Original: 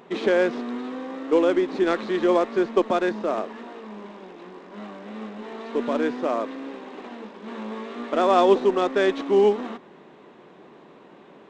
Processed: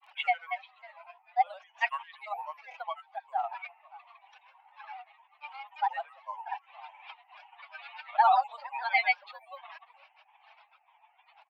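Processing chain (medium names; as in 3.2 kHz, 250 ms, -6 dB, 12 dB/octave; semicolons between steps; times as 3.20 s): spectral contrast enhancement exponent 2.2; on a send: multi-tap echo 46/541 ms -20/-20 dB; on the sum: granulator 100 ms, pitch spread up and down by 7 st; steep high-pass 780 Hz 72 dB/octave; resonant high shelf 1.9 kHz +9 dB, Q 3; trim +6 dB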